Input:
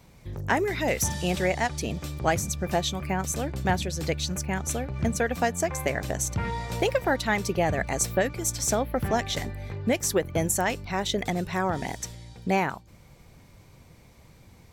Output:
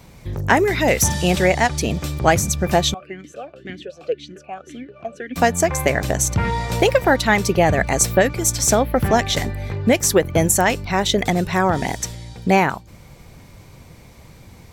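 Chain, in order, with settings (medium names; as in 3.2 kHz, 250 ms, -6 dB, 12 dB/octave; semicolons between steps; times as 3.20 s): 2.94–5.36 s: talking filter a-i 1.9 Hz; trim +9 dB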